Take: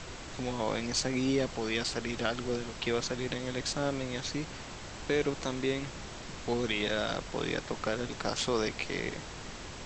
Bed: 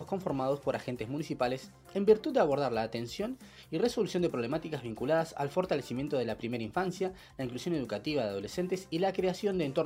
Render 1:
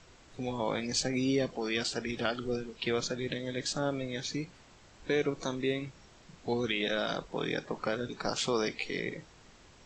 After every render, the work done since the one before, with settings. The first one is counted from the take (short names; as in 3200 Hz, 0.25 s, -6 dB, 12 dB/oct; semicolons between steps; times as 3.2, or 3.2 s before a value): noise print and reduce 14 dB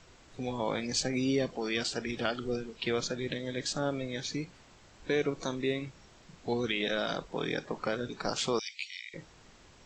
8.59–9.14 steep high-pass 2300 Hz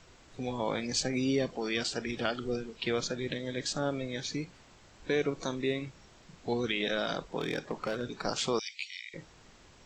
7.39–8.21 hard clip -26 dBFS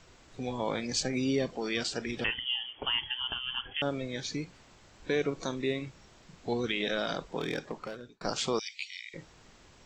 2.24–3.82 inverted band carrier 3300 Hz; 7.57–8.21 fade out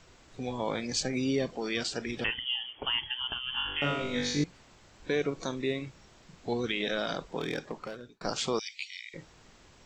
3.51–4.44 flutter echo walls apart 3.5 m, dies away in 0.84 s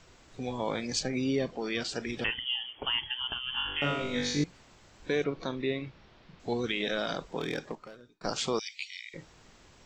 0.99–1.89 air absorption 66 m; 5.24–6.4 LPF 4400 Hz 24 dB/oct; 7.75–8.24 resonator 310 Hz, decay 0.51 s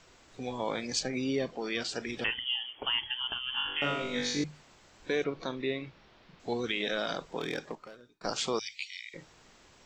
low shelf 230 Hz -5.5 dB; notches 50/100/150 Hz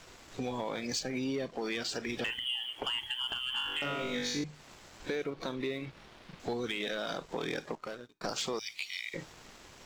compressor 4:1, threshold -40 dBFS, peak gain reduction 12 dB; sample leveller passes 2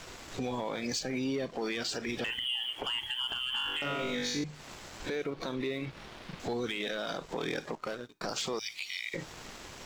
in parallel at +1.5 dB: compressor, threshold -43 dBFS, peak gain reduction 11.5 dB; on the sum: limiter -26 dBFS, peak gain reduction 6 dB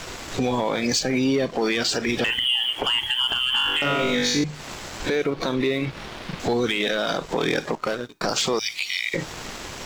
gain +11.5 dB